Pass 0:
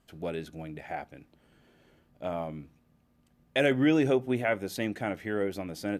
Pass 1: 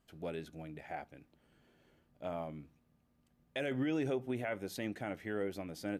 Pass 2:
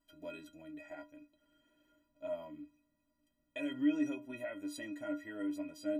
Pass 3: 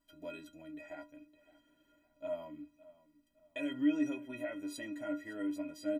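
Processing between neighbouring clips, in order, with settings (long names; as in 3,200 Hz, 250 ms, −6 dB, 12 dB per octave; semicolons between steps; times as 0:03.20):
brickwall limiter −20 dBFS, peak gain reduction 7 dB; level −6.5 dB
stiff-string resonator 290 Hz, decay 0.28 s, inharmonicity 0.03; level +11.5 dB
repeating echo 562 ms, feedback 37%, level −20 dB; level +1 dB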